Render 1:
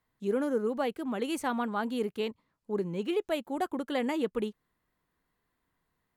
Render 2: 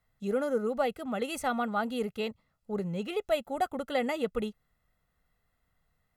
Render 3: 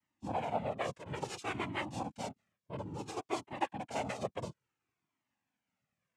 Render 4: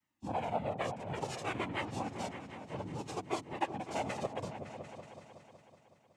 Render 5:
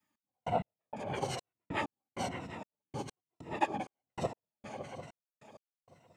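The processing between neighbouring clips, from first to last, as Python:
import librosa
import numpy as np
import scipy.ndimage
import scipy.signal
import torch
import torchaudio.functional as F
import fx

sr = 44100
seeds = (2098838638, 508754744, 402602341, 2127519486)

y1 = fx.low_shelf(x, sr, hz=82.0, db=7.5)
y1 = y1 + 0.64 * np.pad(y1, (int(1.5 * sr / 1000.0), 0))[:len(y1)]
y2 = fx.noise_vocoder(y1, sr, seeds[0], bands=4)
y2 = fx.comb_cascade(y2, sr, direction='falling', hz=0.58)
y2 = F.gain(torch.from_numpy(y2), -2.5).numpy()
y3 = fx.echo_opening(y2, sr, ms=186, hz=200, octaves=2, feedback_pct=70, wet_db=-6)
y4 = fx.spec_ripple(y3, sr, per_octave=2.0, drift_hz=-1.1, depth_db=10)
y4 = fx.step_gate(y4, sr, bpm=97, pattern='x..x..xx', floor_db=-60.0, edge_ms=4.5)
y4 = F.gain(torch.from_numpy(y4), 2.0).numpy()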